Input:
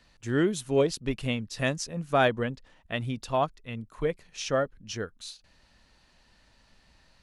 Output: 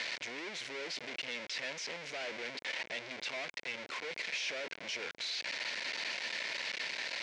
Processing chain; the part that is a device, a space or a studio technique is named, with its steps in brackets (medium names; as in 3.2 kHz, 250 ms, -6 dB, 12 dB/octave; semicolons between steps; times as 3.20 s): home computer beeper (one-bit comparator; cabinet simulation 550–5400 Hz, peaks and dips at 810 Hz -7 dB, 1.2 kHz -10 dB, 2.2 kHz +9 dB); trim -5.5 dB